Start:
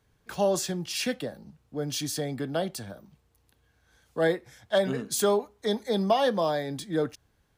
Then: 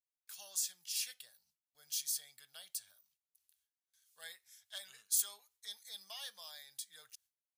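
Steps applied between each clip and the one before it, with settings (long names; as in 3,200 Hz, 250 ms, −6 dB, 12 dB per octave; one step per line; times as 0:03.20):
first-order pre-emphasis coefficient 0.97
noise gate with hold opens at −60 dBFS
guitar amp tone stack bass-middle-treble 10-0-10
level −2 dB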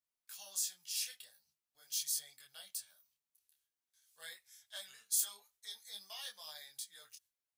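micro pitch shift up and down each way 16 cents
level +4 dB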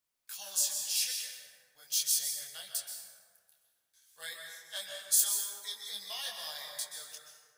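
dense smooth reverb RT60 1.8 s, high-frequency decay 0.45×, pre-delay 115 ms, DRR 2 dB
level +7 dB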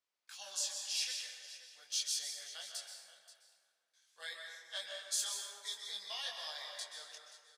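band-pass filter 350–5,600 Hz
single-tap delay 530 ms −15.5 dB
level −1.5 dB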